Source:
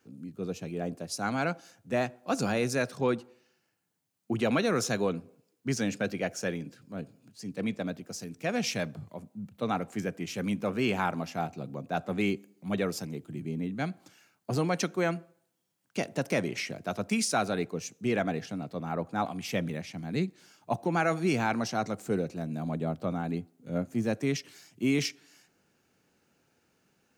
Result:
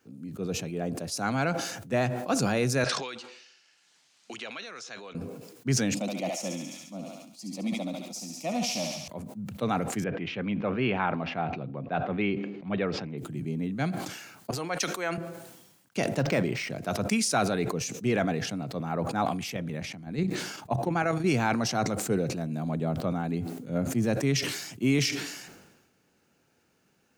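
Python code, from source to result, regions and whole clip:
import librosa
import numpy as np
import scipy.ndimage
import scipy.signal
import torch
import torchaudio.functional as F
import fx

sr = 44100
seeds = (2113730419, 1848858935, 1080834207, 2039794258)

y = fx.chain(x, sr, fx.bandpass_q(hz=7100.0, q=0.57),
    fx.air_absorb(metres=130.0),
    fx.band_squash(depth_pct=100), at=(2.84, 5.15))
y = fx.chain(y, sr, fx.highpass(hz=130.0, slope=12),
    fx.fixed_phaser(hz=430.0, stages=6),
    fx.echo_thinned(ms=70, feedback_pct=72, hz=680.0, wet_db=-4), at=(5.94, 9.08))
y = fx.chain(y, sr, fx.lowpass(hz=3200.0, slope=24),
    fx.low_shelf(hz=320.0, db=-3.0), at=(10.04, 13.18))
y = fx.chain(y, sr, fx.highpass(hz=840.0, slope=6),
    fx.band_widen(depth_pct=70), at=(14.51, 15.18))
y = fx.chain(y, sr, fx.hum_notches(base_hz=50, count=3),
    fx.resample_linear(factor=4), at=(16.19, 16.7))
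y = fx.chain(y, sr, fx.high_shelf(hz=3100.0, db=-4.0),
    fx.level_steps(step_db=9), at=(19.5, 21.26))
y = fx.dynamic_eq(y, sr, hz=130.0, q=5.6, threshold_db=-52.0, ratio=4.0, max_db=6)
y = fx.sustainer(y, sr, db_per_s=49.0)
y = F.gain(torch.from_numpy(y), 1.5).numpy()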